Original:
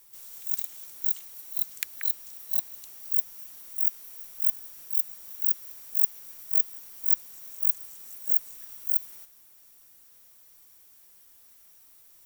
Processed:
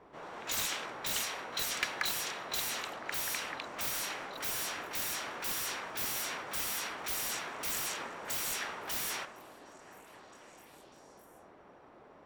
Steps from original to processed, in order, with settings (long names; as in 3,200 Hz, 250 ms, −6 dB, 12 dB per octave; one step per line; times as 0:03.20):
low-pass that shuts in the quiet parts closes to 550 Hz, open at −25 dBFS
echo through a band-pass that steps 253 ms, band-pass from 190 Hz, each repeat 0.7 octaves, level −7 dB
mid-hump overdrive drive 34 dB, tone 3,000 Hz, clips at −17 dBFS